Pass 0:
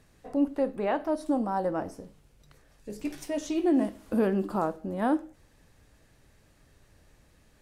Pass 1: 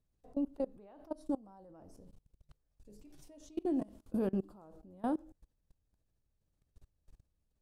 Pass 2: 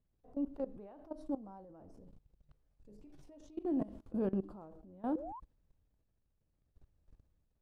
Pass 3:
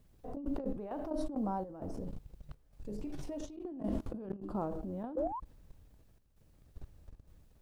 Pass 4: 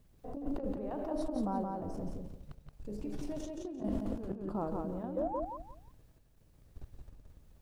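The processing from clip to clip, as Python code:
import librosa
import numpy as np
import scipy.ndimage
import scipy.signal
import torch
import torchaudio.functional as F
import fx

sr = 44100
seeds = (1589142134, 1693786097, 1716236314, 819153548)

y1 = fx.low_shelf(x, sr, hz=110.0, db=12.0)
y1 = fx.level_steps(y1, sr, step_db=24)
y1 = fx.peak_eq(y1, sr, hz=1900.0, db=-8.5, octaves=1.1)
y1 = y1 * 10.0 ** (-7.0 / 20.0)
y2 = fx.spec_paint(y1, sr, seeds[0], shape='rise', start_s=5.15, length_s=0.25, low_hz=470.0, high_hz=1100.0, level_db=-50.0)
y2 = fx.lowpass(y2, sr, hz=1700.0, slope=6)
y2 = fx.transient(y2, sr, attack_db=-4, sustain_db=6)
y3 = fx.over_compress(y2, sr, threshold_db=-46.0, ratio=-1.0)
y3 = fx.chopper(y3, sr, hz=1.1, depth_pct=60, duty_pct=80)
y3 = y3 * 10.0 ** (10.0 / 20.0)
y4 = fx.echo_feedback(y3, sr, ms=173, feedback_pct=24, wet_db=-3.5)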